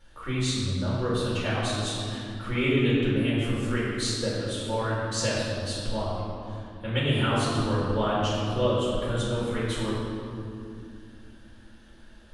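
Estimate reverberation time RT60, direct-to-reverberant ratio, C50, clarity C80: 2.6 s, -8.5 dB, -1.5 dB, 0.0 dB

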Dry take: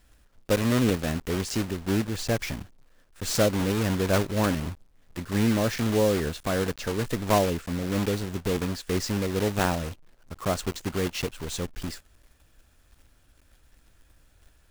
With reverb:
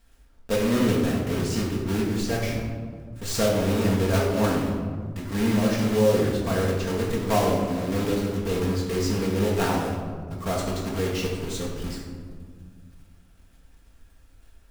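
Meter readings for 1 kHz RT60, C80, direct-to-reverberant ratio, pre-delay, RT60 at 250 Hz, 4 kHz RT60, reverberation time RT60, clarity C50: 1.7 s, 4.0 dB, -4.0 dB, 4 ms, 2.8 s, 0.85 s, 1.8 s, 2.0 dB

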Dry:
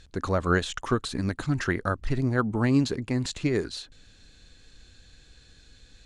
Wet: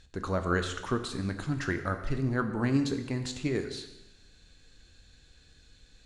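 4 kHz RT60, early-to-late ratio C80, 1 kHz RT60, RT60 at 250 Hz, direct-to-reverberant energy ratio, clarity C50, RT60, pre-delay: 0.90 s, 11.0 dB, 0.95 s, 1.0 s, 6.5 dB, 9.0 dB, 0.95 s, 6 ms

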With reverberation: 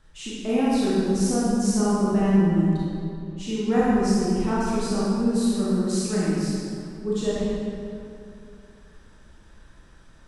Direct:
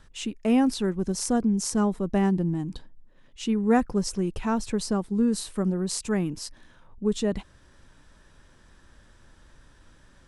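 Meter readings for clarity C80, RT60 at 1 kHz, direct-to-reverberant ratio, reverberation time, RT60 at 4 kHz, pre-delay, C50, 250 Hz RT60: -1.5 dB, 2.4 s, -8.5 dB, 2.5 s, 1.6 s, 26 ms, -4.5 dB, 2.9 s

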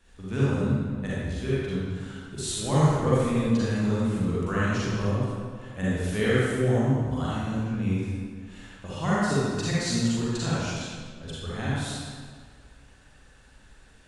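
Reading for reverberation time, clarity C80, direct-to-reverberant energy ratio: 1.8 s, -2.5 dB, -9.0 dB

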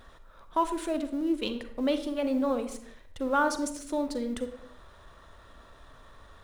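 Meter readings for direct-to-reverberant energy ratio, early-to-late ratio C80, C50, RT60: 9.0 dB, 13.5 dB, 10.0 dB, no single decay rate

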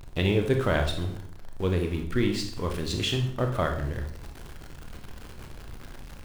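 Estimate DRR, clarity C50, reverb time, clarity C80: 3.5 dB, 7.5 dB, 0.60 s, 11.5 dB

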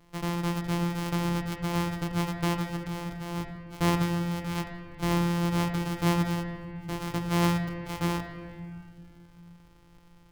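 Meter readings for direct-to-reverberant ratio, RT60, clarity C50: 3.5 dB, 1.9 s, 6.5 dB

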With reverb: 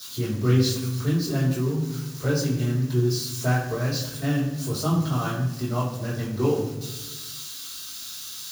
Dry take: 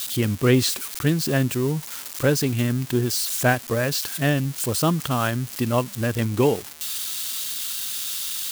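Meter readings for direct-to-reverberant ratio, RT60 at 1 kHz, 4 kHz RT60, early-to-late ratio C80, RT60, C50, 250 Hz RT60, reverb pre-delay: -8.0 dB, 0.95 s, 0.80 s, 7.0 dB, 1.1 s, 4.0 dB, 1.6 s, 3 ms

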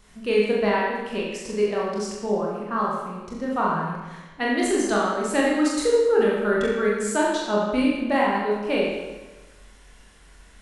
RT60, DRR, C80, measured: 1.2 s, -4.5 dB, 2.5 dB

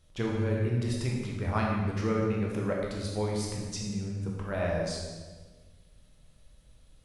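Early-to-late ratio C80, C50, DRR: 2.5 dB, 0.5 dB, -2.5 dB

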